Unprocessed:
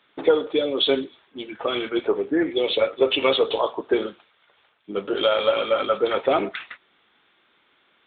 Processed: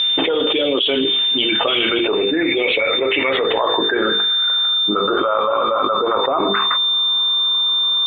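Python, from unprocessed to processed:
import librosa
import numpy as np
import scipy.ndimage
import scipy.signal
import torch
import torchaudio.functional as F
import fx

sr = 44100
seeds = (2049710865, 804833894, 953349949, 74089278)

y = fx.filter_sweep_lowpass(x, sr, from_hz=3000.0, to_hz=1100.0, start_s=1.75, end_s=5.5, q=7.5)
y = y + 10.0 ** (-31.0 / 20.0) * np.sin(2.0 * np.pi * 3600.0 * np.arange(len(y)) / sr)
y = fx.air_absorb(y, sr, metres=140.0)
y = fx.hum_notches(y, sr, base_hz=50, count=10)
y = fx.env_flatten(y, sr, amount_pct=100)
y = F.gain(torch.from_numpy(y), -6.0).numpy()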